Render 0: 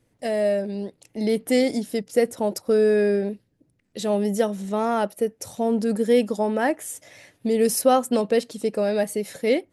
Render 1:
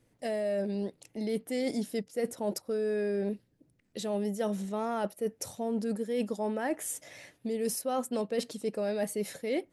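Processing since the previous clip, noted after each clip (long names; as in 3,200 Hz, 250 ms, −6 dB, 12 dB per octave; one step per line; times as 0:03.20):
mains-hum notches 50/100 Hz
reversed playback
downward compressor 10 to 1, threshold −26 dBFS, peak gain reduction 14.5 dB
reversed playback
level −2 dB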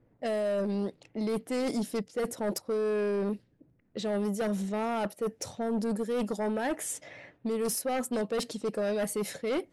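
low-pass that shuts in the quiet parts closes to 1,300 Hz, open at −29.5 dBFS
sine wavefolder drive 7 dB, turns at −18.5 dBFS
level −7 dB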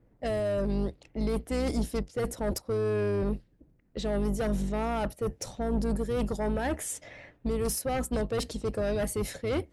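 sub-octave generator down 2 octaves, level 0 dB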